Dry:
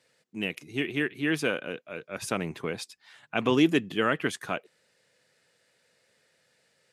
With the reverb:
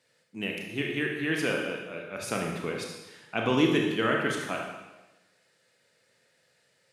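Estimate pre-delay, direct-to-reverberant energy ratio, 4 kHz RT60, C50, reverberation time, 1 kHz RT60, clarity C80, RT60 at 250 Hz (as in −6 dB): 24 ms, 0.0 dB, 1.1 s, 2.5 dB, 1.1 s, 1.1 s, 5.0 dB, 1.1 s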